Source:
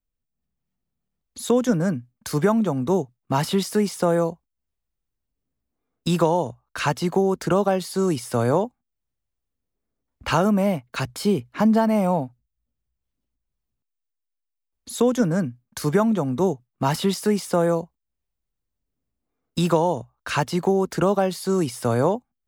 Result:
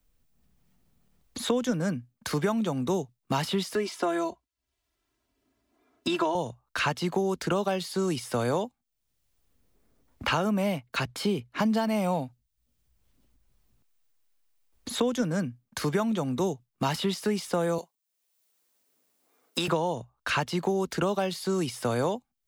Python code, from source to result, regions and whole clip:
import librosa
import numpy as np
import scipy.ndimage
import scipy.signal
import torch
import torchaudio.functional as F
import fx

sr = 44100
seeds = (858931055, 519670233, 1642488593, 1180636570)

y = fx.chain(x, sr, fx.highpass(hz=310.0, slope=6),
    fx.high_shelf(hz=7100.0, db=-11.5),
    fx.comb(ms=3.0, depth=0.83), at=(3.75, 6.35))
y = fx.chain(y, sr, fx.highpass(hz=420.0, slope=12),
    fx.high_shelf(hz=4300.0, db=7.5), at=(17.78, 19.68))
y = fx.dynamic_eq(y, sr, hz=3300.0, q=0.81, threshold_db=-44.0, ratio=4.0, max_db=7)
y = fx.band_squash(y, sr, depth_pct=70)
y = F.gain(torch.from_numpy(y), -7.0).numpy()